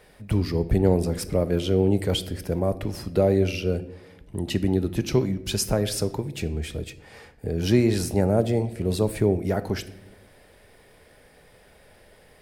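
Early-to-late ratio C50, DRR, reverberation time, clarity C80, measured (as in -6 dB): 16.0 dB, 11.5 dB, 0.95 s, 18.0 dB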